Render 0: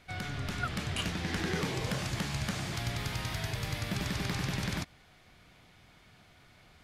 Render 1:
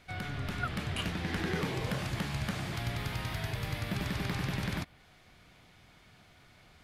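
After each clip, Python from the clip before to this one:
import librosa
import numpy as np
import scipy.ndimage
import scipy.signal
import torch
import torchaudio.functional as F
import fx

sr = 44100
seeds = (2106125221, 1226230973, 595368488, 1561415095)

y = fx.dynamic_eq(x, sr, hz=6500.0, q=0.99, threshold_db=-57.0, ratio=4.0, max_db=-7)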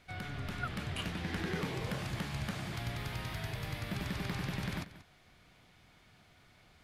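y = x + 10.0 ** (-15.5 / 20.0) * np.pad(x, (int(185 * sr / 1000.0), 0))[:len(x)]
y = F.gain(torch.from_numpy(y), -3.5).numpy()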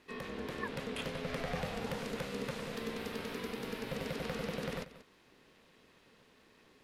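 y = x * np.sin(2.0 * np.pi * 340.0 * np.arange(len(x)) / sr)
y = F.gain(torch.from_numpy(y), 1.5).numpy()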